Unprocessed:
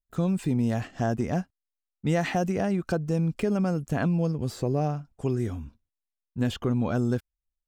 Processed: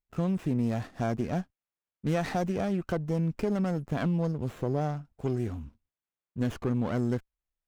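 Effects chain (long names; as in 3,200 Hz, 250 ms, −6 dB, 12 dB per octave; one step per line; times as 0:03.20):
windowed peak hold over 9 samples
level −2.5 dB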